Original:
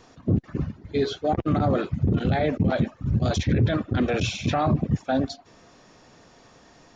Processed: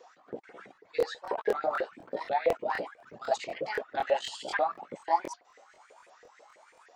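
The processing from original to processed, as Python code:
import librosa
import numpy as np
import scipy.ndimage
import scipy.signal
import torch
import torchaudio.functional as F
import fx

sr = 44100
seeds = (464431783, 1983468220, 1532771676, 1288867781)

y = fx.pitch_ramps(x, sr, semitones=5.5, every_ms=762)
y = fx.filter_lfo_highpass(y, sr, shape='saw_up', hz=6.1, low_hz=440.0, high_hz=2100.0, q=7.0)
y = fx.buffer_crackle(y, sr, first_s=0.73, period_s=0.25, block=1024, kind='repeat')
y = y * 10.0 ** (-9.0 / 20.0)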